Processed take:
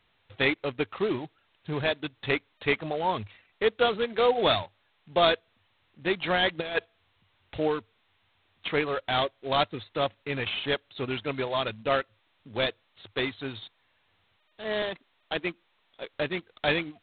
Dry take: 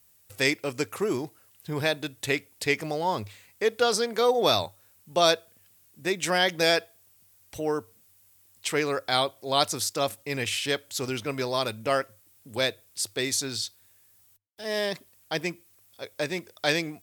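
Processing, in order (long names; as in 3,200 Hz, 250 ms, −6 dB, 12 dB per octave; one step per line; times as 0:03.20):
0:14.82–0:16.14: high-pass filter 190 Hz 24 dB per octave
reverb reduction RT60 0.61 s
0:06.59–0:07.68: compressor whose output falls as the input rises −27 dBFS, ratio −0.5
G.726 16 kbit/s 8,000 Hz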